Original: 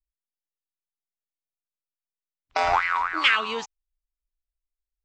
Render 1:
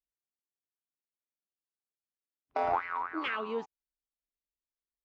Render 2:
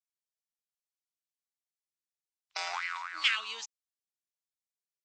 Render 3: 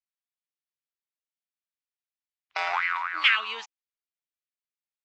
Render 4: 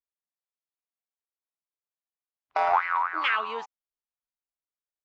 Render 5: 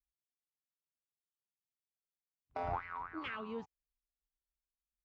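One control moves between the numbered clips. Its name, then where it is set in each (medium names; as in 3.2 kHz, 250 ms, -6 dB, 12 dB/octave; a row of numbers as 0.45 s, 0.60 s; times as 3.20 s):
band-pass filter, frequency: 320 Hz, 6.3 kHz, 2.4 kHz, 890 Hz, 120 Hz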